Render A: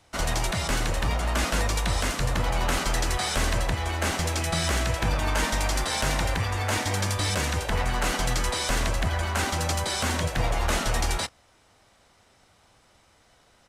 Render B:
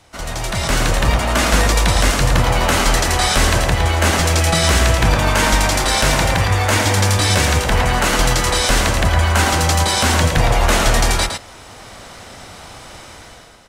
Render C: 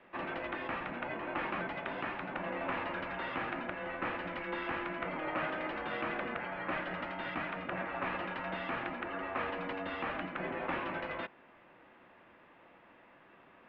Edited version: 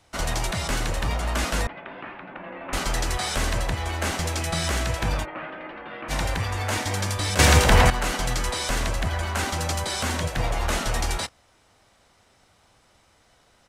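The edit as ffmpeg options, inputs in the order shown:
-filter_complex "[2:a]asplit=2[a][b];[0:a]asplit=4[c][d][e][f];[c]atrim=end=1.672[g];[a]atrim=start=1.668:end=2.732[h];[d]atrim=start=2.728:end=5.26[i];[b]atrim=start=5.22:end=6.12[j];[e]atrim=start=6.08:end=7.392[k];[1:a]atrim=start=7.388:end=7.902[l];[f]atrim=start=7.898[m];[g][h]acrossfade=d=0.004:c1=hsin:c2=hsin[n];[n][i]acrossfade=d=0.004:c1=hsin:c2=hsin[o];[o][j]acrossfade=d=0.04:c1=tri:c2=tri[p];[p][k]acrossfade=d=0.04:c1=tri:c2=tri[q];[q][l]acrossfade=d=0.004:c1=hsin:c2=hsin[r];[r][m]acrossfade=d=0.004:c1=hsin:c2=hsin"

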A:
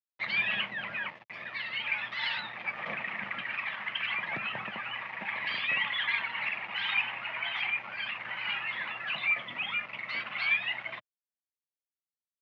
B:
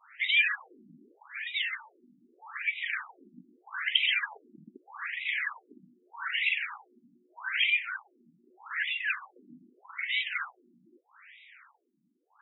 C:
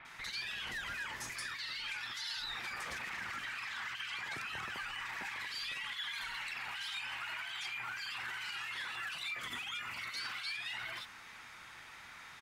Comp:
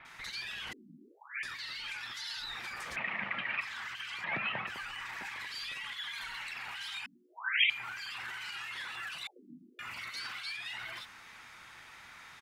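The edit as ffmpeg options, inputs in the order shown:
-filter_complex "[1:a]asplit=3[a][b][c];[0:a]asplit=2[d][e];[2:a]asplit=6[f][g][h][i][j][k];[f]atrim=end=0.732[l];[a]atrim=start=0.728:end=1.432[m];[g]atrim=start=1.428:end=2.962[n];[d]atrim=start=2.958:end=3.612[o];[h]atrim=start=3.608:end=4.242[p];[e]atrim=start=4.238:end=4.672[q];[i]atrim=start=4.668:end=7.062[r];[b]atrim=start=7.058:end=7.702[s];[j]atrim=start=7.698:end=9.272[t];[c]atrim=start=9.268:end=9.792[u];[k]atrim=start=9.788[v];[l][m]acrossfade=d=0.004:c1=hsin:c2=hsin[w];[w][n]acrossfade=d=0.004:c1=hsin:c2=hsin[x];[x][o]acrossfade=d=0.004:c1=hsin:c2=hsin[y];[y][p]acrossfade=d=0.004:c1=hsin:c2=hsin[z];[z][q]acrossfade=d=0.004:c1=hsin:c2=hsin[aa];[aa][r]acrossfade=d=0.004:c1=hsin:c2=hsin[ab];[ab][s]acrossfade=d=0.004:c1=hsin:c2=hsin[ac];[ac][t]acrossfade=d=0.004:c1=hsin:c2=hsin[ad];[ad][u]acrossfade=d=0.004:c1=hsin:c2=hsin[ae];[ae][v]acrossfade=d=0.004:c1=hsin:c2=hsin"

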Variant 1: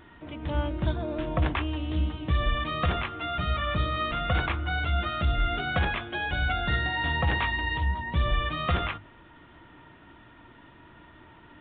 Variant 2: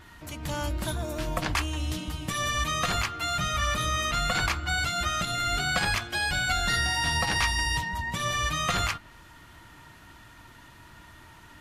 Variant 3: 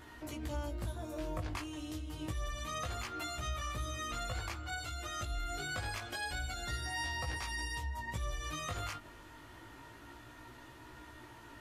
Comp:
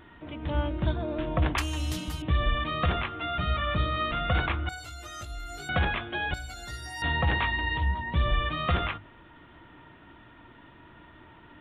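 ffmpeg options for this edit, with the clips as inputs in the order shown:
-filter_complex "[2:a]asplit=2[a][b];[0:a]asplit=4[c][d][e][f];[c]atrim=end=1.582[g];[1:a]atrim=start=1.578:end=2.222[h];[d]atrim=start=2.218:end=4.692[i];[a]atrim=start=4.688:end=5.692[j];[e]atrim=start=5.688:end=6.342[k];[b]atrim=start=6.338:end=7.022[l];[f]atrim=start=7.018[m];[g][h]acrossfade=d=0.004:c1=hsin:c2=hsin[n];[n][i]acrossfade=d=0.004:c1=hsin:c2=hsin[o];[o][j]acrossfade=d=0.004:c1=hsin:c2=hsin[p];[p][k]acrossfade=d=0.004:c1=hsin:c2=hsin[q];[q][l]acrossfade=d=0.004:c1=hsin:c2=hsin[r];[r][m]acrossfade=d=0.004:c1=hsin:c2=hsin"

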